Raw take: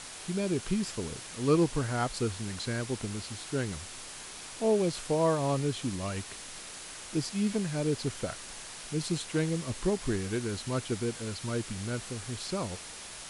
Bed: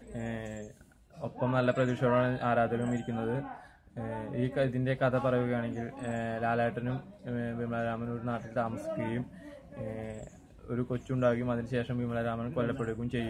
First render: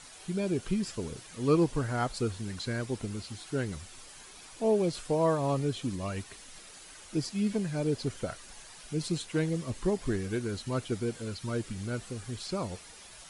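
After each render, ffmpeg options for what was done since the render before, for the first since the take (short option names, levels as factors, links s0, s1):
-af "afftdn=nr=9:nf=-44"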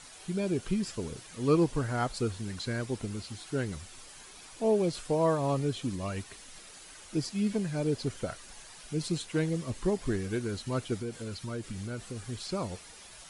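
-filter_complex "[0:a]asettb=1/sr,asplit=3[s0][s1][s2];[s0]atrim=end=11.014[s3];[s1]atrim=start=11.01:end=12.17,asetpts=PTS-STARTPTS,afade=t=in:d=0.004:c=qsin,afade=t=out:st=1.156:d=0.004:c=qsin,acompressor=threshold=0.0224:ratio=3:attack=3.2:release=140:knee=1:detection=peak[s4];[s2]atrim=start=12.166[s5];[s3][s4]acrossfade=d=0.004:c1=hsin:c2=qsin[s6];[s6][s5]acrossfade=d=0.004:c1=qsin:c2=hsin"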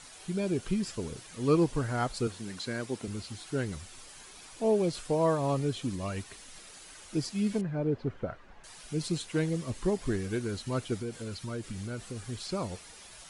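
-filter_complex "[0:a]asettb=1/sr,asplit=3[s0][s1][s2];[s0]atrim=end=2.274[s3];[s1]atrim=start=2.27:end=3.08,asetpts=PTS-STARTPTS,afade=t=in:d=0.004:c=qsin,afade=t=out:st=0.806:d=0.004:c=qsin,highpass=160[s4];[s2]atrim=start=3.076[s5];[s3][s4]acrossfade=d=0.004:c1=hsin:c2=qsin[s6];[s6][s5]acrossfade=d=0.004:c1=qsin:c2=hsin,asettb=1/sr,asplit=3[s7][s8][s9];[s7]atrim=end=7.614[s10];[s8]atrim=start=7.61:end=8.64,asetpts=PTS-STARTPTS,afade=t=in:d=0.004:c=qsin,afade=t=out:st=1.026:d=0.004:c=qsin,lowpass=1600[s11];[s9]atrim=start=8.636[s12];[s10][s11]acrossfade=d=0.004:c1=hsin:c2=qsin[s13];[s13][s12]acrossfade=d=0.004:c1=qsin:c2=hsin"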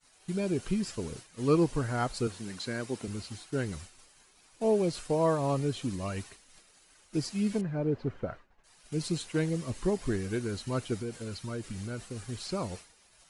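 -af "bandreject=f=3400:w=22,agate=range=0.0224:threshold=0.00891:ratio=3:detection=peak"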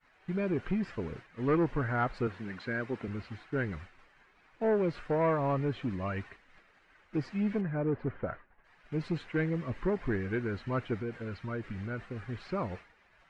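-af "asoftclip=type=tanh:threshold=0.0794,lowpass=f=1900:t=q:w=1.9"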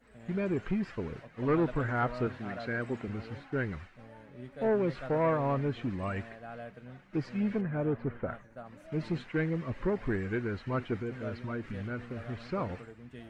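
-filter_complex "[1:a]volume=0.188[s0];[0:a][s0]amix=inputs=2:normalize=0"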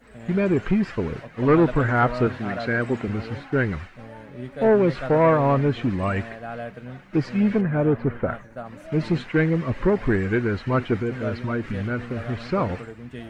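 -af "volume=3.35"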